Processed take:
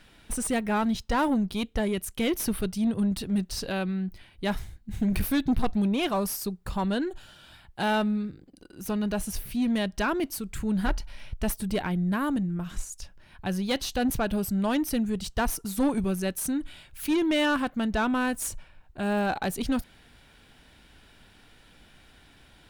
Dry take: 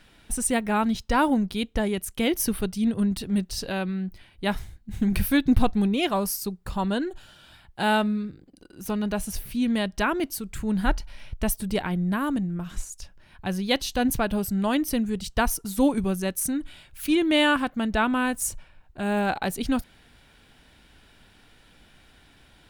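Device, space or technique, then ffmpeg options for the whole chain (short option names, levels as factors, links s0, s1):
saturation between pre-emphasis and de-emphasis: -af "highshelf=f=3200:g=10,asoftclip=type=tanh:threshold=0.119,highshelf=f=3200:g=-10"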